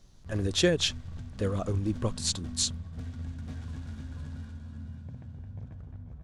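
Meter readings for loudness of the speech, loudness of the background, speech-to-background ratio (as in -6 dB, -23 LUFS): -29.5 LUFS, -42.0 LUFS, 12.5 dB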